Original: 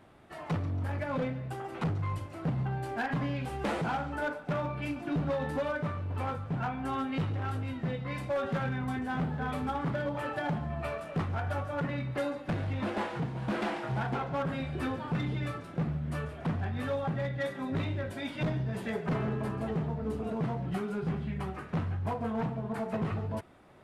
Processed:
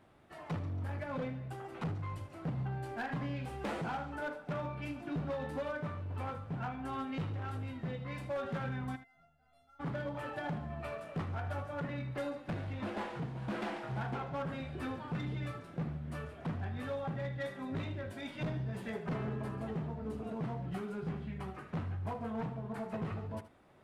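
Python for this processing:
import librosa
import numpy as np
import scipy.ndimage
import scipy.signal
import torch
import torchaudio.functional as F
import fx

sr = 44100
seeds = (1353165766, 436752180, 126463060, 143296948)

y = fx.tracing_dist(x, sr, depth_ms=0.027)
y = fx.comb_fb(y, sr, f0_hz=690.0, decay_s=0.46, harmonics='all', damping=0.0, mix_pct=100, at=(8.95, 9.79), fade=0.02)
y = y + 10.0 ** (-14.5 / 20.0) * np.pad(y, (int(77 * sr / 1000.0), 0))[:len(y)]
y = y * 10.0 ** (-6.0 / 20.0)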